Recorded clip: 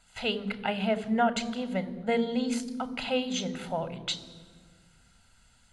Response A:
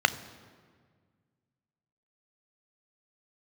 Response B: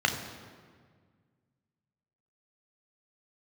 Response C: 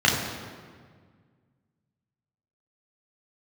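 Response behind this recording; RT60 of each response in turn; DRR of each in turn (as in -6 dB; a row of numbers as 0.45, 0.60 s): A; 1.7, 1.7, 1.7 s; 12.5, 3.5, -3.5 dB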